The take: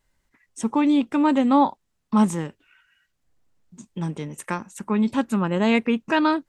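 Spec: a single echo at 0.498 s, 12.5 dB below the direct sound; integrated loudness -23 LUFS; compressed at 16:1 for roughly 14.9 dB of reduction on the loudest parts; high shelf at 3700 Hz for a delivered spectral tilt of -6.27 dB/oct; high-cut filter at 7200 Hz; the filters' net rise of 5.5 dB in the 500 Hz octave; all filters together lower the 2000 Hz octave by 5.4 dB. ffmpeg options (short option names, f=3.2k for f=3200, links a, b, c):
-af "lowpass=7.2k,equalizer=f=500:t=o:g=7,equalizer=f=2k:t=o:g=-8.5,highshelf=f=3.7k:g=3,acompressor=threshold=-26dB:ratio=16,aecho=1:1:498:0.237,volume=9dB"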